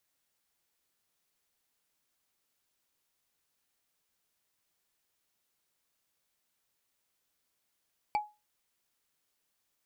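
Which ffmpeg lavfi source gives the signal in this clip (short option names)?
-f lavfi -i "aevalsrc='0.0708*pow(10,-3*t/0.26)*sin(2*PI*840*t)+0.0282*pow(10,-3*t/0.077)*sin(2*PI*2315.9*t)+0.0112*pow(10,-3*t/0.034)*sin(2*PI*4539.4*t)+0.00447*pow(10,-3*t/0.019)*sin(2*PI*7503.7*t)+0.00178*pow(10,-3*t/0.012)*sin(2*PI*11205.6*t)':d=0.45:s=44100"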